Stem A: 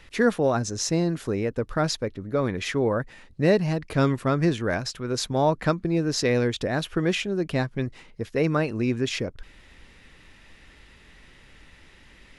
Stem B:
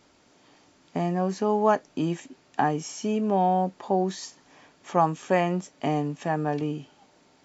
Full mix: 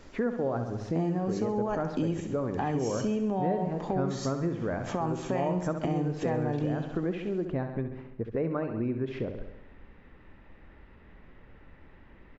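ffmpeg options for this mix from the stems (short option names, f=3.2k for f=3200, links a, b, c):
-filter_complex "[0:a]lowpass=1.2k,bandreject=f=50:t=h:w=6,bandreject=f=100:t=h:w=6,bandreject=f=150:t=h:w=6,volume=0.5dB,asplit=2[a][b];[b]volume=-9.5dB[c];[1:a]lowshelf=f=470:g=6,alimiter=limit=-15dB:level=0:latency=1,volume=2dB,asplit=2[d][e];[e]volume=-11.5dB[f];[c][f]amix=inputs=2:normalize=0,aecho=0:1:67|134|201|268|335|402|469|536|603:1|0.57|0.325|0.185|0.106|0.0602|0.0343|0.0195|0.0111[g];[a][d][g]amix=inputs=3:normalize=0,acompressor=threshold=-30dB:ratio=2.5"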